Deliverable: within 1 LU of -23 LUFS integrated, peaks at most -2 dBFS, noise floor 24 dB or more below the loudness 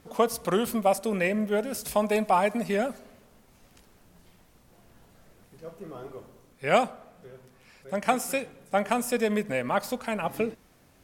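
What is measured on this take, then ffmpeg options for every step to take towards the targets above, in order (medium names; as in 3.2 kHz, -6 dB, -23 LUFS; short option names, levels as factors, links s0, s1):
loudness -27.5 LUFS; peak level -7.0 dBFS; loudness target -23.0 LUFS
-> -af "volume=1.68"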